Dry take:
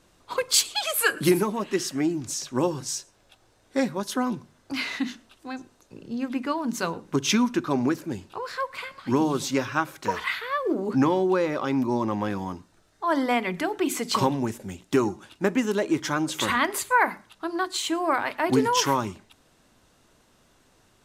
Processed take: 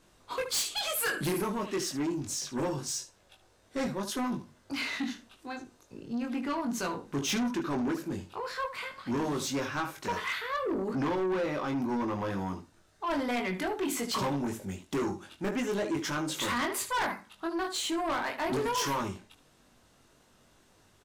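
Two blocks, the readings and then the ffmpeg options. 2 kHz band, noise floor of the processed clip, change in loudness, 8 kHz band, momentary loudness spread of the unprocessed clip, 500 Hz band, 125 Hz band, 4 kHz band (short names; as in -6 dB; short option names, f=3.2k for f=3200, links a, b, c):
-6.5 dB, -64 dBFS, -6.5 dB, -6.0 dB, 11 LU, -6.5 dB, -6.0 dB, -5.5 dB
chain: -af "aecho=1:1:21|75:0.631|0.211,asoftclip=type=tanh:threshold=-23dB,volume=-3.5dB"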